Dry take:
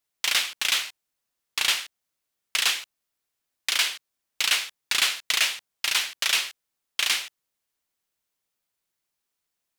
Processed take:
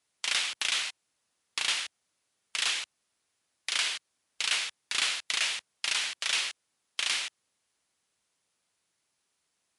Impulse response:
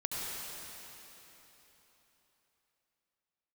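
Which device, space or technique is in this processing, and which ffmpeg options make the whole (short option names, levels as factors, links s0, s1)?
podcast mastering chain: -af "highpass=68,acompressor=threshold=0.0355:ratio=2.5,alimiter=limit=0.0891:level=0:latency=1:release=148,volume=2.11" -ar 24000 -c:a libmp3lame -b:a 96k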